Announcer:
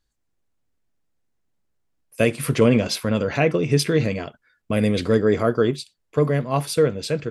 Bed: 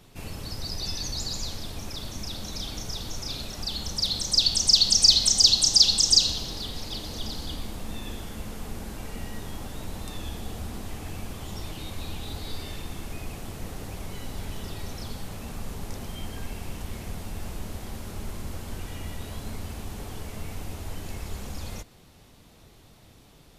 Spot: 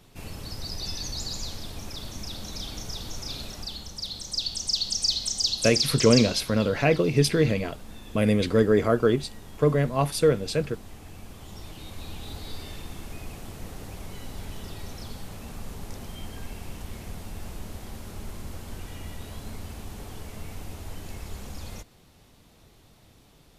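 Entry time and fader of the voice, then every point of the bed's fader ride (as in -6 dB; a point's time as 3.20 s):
3.45 s, -2.0 dB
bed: 3.50 s -1.5 dB
3.91 s -8 dB
11.12 s -8 dB
12.28 s -2.5 dB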